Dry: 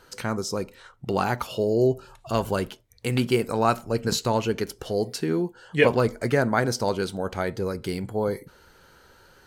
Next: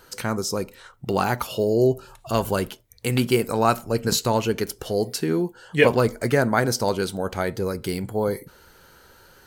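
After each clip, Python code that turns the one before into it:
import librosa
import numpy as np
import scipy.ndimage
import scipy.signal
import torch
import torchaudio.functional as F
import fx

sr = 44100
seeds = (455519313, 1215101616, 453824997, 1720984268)

y = fx.high_shelf(x, sr, hz=11000.0, db=12.0)
y = y * 10.0 ** (2.0 / 20.0)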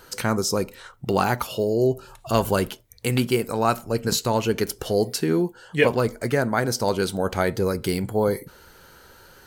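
y = fx.rider(x, sr, range_db=3, speed_s=0.5)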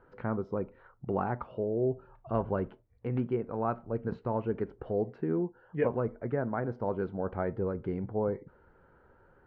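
y = scipy.signal.sosfilt(scipy.signal.bessel(4, 1100.0, 'lowpass', norm='mag', fs=sr, output='sos'), x)
y = y * 10.0 ** (-8.5 / 20.0)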